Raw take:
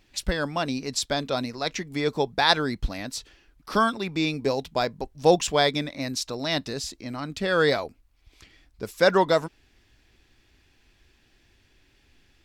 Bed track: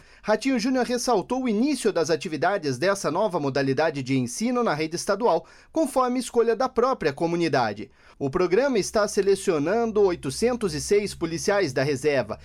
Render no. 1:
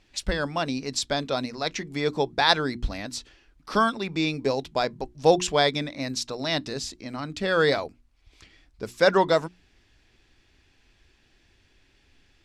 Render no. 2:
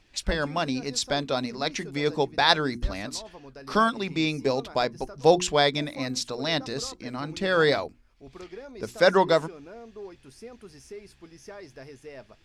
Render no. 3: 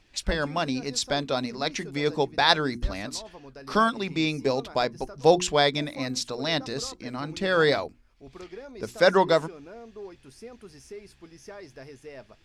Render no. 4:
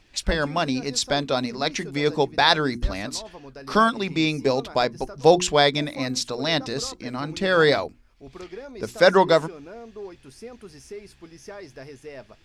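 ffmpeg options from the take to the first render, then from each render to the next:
-af "lowpass=9200,bandreject=f=60:t=h:w=6,bandreject=f=120:t=h:w=6,bandreject=f=180:t=h:w=6,bandreject=f=240:t=h:w=6,bandreject=f=300:t=h:w=6,bandreject=f=360:t=h:w=6"
-filter_complex "[1:a]volume=0.0891[s0];[0:a][s0]amix=inputs=2:normalize=0"
-af anull
-af "volume=1.5,alimiter=limit=0.708:level=0:latency=1"

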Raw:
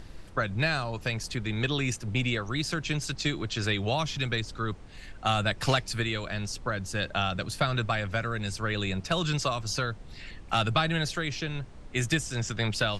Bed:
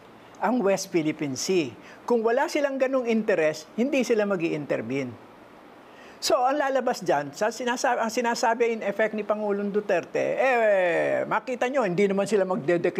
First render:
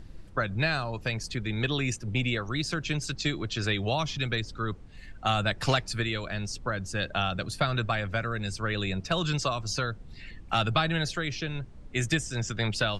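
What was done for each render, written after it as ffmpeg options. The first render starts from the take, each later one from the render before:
-af "afftdn=nr=8:nf=-46"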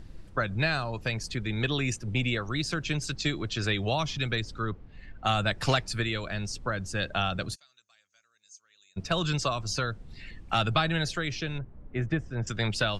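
-filter_complex "[0:a]asettb=1/sr,asplit=3[s0][s1][s2];[s0]atrim=end=4.654[s3];[s1]atrim=start=4.65:end=5.24,asetpts=PTS-STARTPTS,afade=t=in:d=0.004:c=qsin,afade=t=out:st=0.586:d=0.004:c=qsin,adynamicsmooth=sensitivity=1:basefreq=3500[s4];[s2]atrim=start=5.236[s5];[s3][s4]acrossfade=d=0.004:c1=hsin:c2=qsin[s6];[s6][s5]acrossfade=d=0.004:c1=qsin:c2=hsin,asplit=3[s7][s8][s9];[s7]afade=t=out:st=7.54:d=0.02[s10];[s8]bandpass=f=6500:t=q:w=14,afade=t=in:st=7.54:d=0.02,afade=t=out:st=8.96:d=0.02[s11];[s9]afade=t=in:st=8.96:d=0.02[s12];[s10][s11][s12]amix=inputs=3:normalize=0,asettb=1/sr,asplit=3[s13][s14][s15];[s13]atrim=end=11.584[s16];[s14]atrim=start=11.58:end=12.47,asetpts=PTS-STARTPTS,afade=t=in:d=0.004:c=qsin,afade=t=out:st=0.886:d=0.004:c=qsin,lowpass=1400[s17];[s15]atrim=start=12.466[s18];[s16][s17]acrossfade=d=0.004:c1=hsin:c2=qsin[s19];[s19][s18]acrossfade=d=0.004:c1=qsin:c2=hsin"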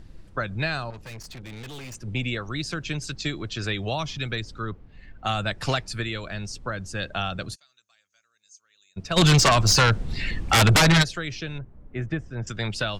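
-filter_complex "[0:a]asettb=1/sr,asplit=3[s0][s1][s2];[s0]atrim=end=0.904[s3];[s1]atrim=start=0.9:end=1.95,asetpts=PTS-STARTPTS,afade=t=in:d=0.004:c=qsin,afade=t=out:st=1.046:d=0.004:c=qsin,aeval=exprs='(tanh(70.8*val(0)+0.4)-tanh(0.4))/70.8':c=same[s4];[s2]atrim=start=1.946[s5];[s3][s4]acrossfade=d=0.004:c1=hsin:c2=qsin[s6];[s6][s5]acrossfade=d=0.004:c1=qsin:c2=hsin,asplit=3[s7][s8][s9];[s7]afade=t=out:st=9.16:d=0.02[s10];[s8]aeval=exprs='0.237*sin(PI/2*3.98*val(0)/0.237)':c=same,afade=t=in:st=9.16:d=0.02,afade=t=out:st=11.02:d=0.02[s11];[s9]afade=t=in:st=11.02:d=0.02[s12];[s10][s11][s12]amix=inputs=3:normalize=0"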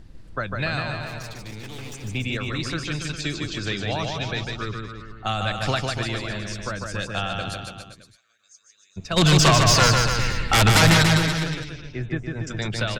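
-af "aecho=1:1:150|285|406.5|515.8|614.3:0.631|0.398|0.251|0.158|0.1"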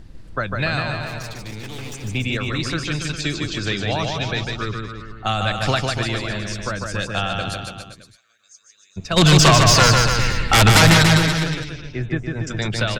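-af "volume=1.58,alimiter=limit=0.708:level=0:latency=1"

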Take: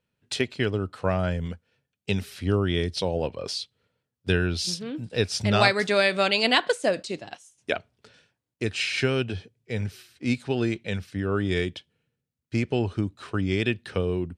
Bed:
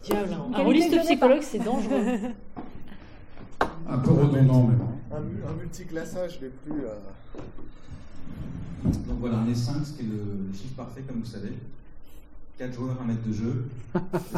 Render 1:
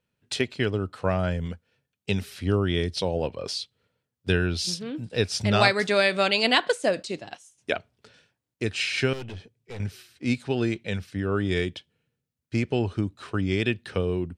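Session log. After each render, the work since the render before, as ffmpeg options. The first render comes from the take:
-filter_complex "[0:a]asettb=1/sr,asplit=3[s0][s1][s2];[s0]atrim=end=9.134[s3];[s1]atrim=start=9.13:end=9.8,asetpts=PTS-STARTPTS,afade=t=in:d=0.004:c=qsin,afade=t=out:st=0.666:d=0.004:c=qsin,aeval=exprs='(tanh(50.1*val(0)+0.4)-tanh(0.4))/50.1':c=same[s4];[s2]atrim=start=9.796[s5];[s3][s4]acrossfade=d=0.004:c1=hsin:c2=qsin[s6];[s6][s5]acrossfade=d=0.004:c1=qsin:c2=hsin"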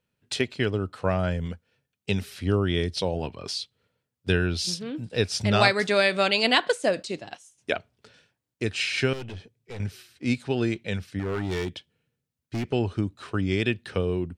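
-filter_complex "[0:a]asettb=1/sr,asplit=3[s0][s1][s2];[s0]atrim=end=3.144[s3];[s1]atrim=start=3.14:end=3.56,asetpts=PTS-STARTPTS,afade=t=in:d=0.004:c=qsin,afade=t=out:st=0.416:d=0.004:c=qsin,equalizer=f=520:t=o:w=0.31:g=-12.5[s4];[s2]atrim=start=3.556[s5];[s3][s4]acrossfade=d=0.004:c1=hsin:c2=qsin[s6];[s6][s5]acrossfade=d=0.004:c1=qsin:c2=hsin,asettb=1/sr,asplit=3[s7][s8][s9];[s7]atrim=end=11.194[s10];[s8]atrim=start=11.19:end=12.73,asetpts=PTS-STARTPTS,afade=t=in:d=0.004:c=qsin,afade=t=out:st=1.536:d=0.004:c=qsin,asoftclip=type=hard:threshold=0.0596[s11];[s9]atrim=start=12.726[s12];[s10][s11]acrossfade=d=0.004:c1=hsin:c2=qsin[s13];[s13][s12]acrossfade=d=0.004:c1=qsin:c2=hsin"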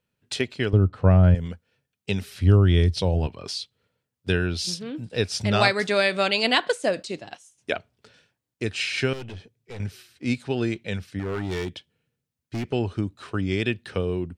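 -filter_complex "[0:a]asettb=1/sr,asplit=3[s0][s1][s2];[s0]atrim=end=0.734[s3];[s1]atrim=start=0.73:end=1.35,asetpts=PTS-STARTPTS,afade=t=in:d=0.004:c=qsin,afade=t=out:st=0.616:d=0.004:c=qsin,aemphasis=mode=reproduction:type=riaa[s4];[s2]atrim=start=1.346[s5];[s3][s4]acrossfade=d=0.004:c1=hsin:c2=qsin[s6];[s6][s5]acrossfade=d=0.004:c1=qsin:c2=hsin,asettb=1/sr,asplit=3[s7][s8][s9];[s7]atrim=end=2.354[s10];[s8]atrim=start=2.35:end=3.27,asetpts=PTS-STARTPTS,afade=t=in:d=0.004:c=qsin,afade=t=out:st=0.916:d=0.004:c=qsin,equalizer=f=69:t=o:w=2.2:g=13[s11];[s9]atrim=start=3.266[s12];[s10][s11]acrossfade=d=0.004:c1=hsin:c2=qsin[s13];[s13][s12]acrossfade=d=0.004:c1=qsin:c2=hsin"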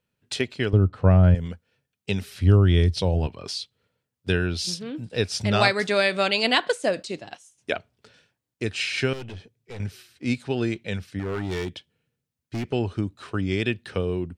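-af anull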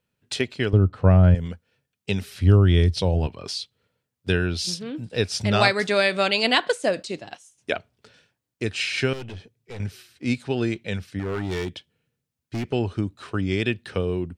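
-af "volume=1.12"

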